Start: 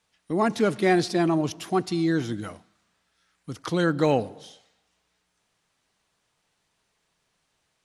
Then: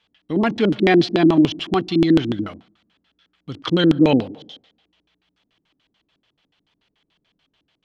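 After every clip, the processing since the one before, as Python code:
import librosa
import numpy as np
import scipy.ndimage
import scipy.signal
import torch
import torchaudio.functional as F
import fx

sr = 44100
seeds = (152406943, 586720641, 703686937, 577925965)

y = fx.filter_lfo_lowpass(x, sr, shape='square', hz=6.9, low_hz=290.0, high_hz=3400.0, q=4.2)
y = fx.notch(y, sr, hz=3700.0, q=12.0)
y = y * librosa.db_to_amplitude(3.5)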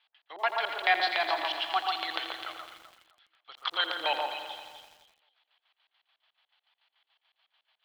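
y = scipy.signal.sosfilt(scipy.signal.ellip(3, 1.0, 50, [730.0, 4400.0], 'bandpass', fs=sr, output='sos'), x)
y = fx.echo_alternate(y, sr, ms=129, hz=1500.0, feedback_pct=52, wet_db=-3)
y = fx.echo_crushed(y, sr, ms=84, feedback_pct=80, bits=8, wet_db=-11)
y = y * librosa.db_to_amplitude(-3.5)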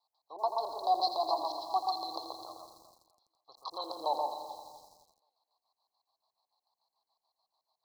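y = scipy.signal.sosfilt(scipy.signal.cheby1(5, 1.0, [1100.0, 4100.0], 'bandstop', fs=sr, output='sos'), x)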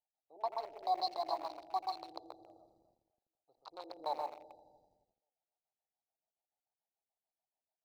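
y = fx.wiener(x, sr, points=41)
y = y * librosa.db_to_amplitude(-5.0)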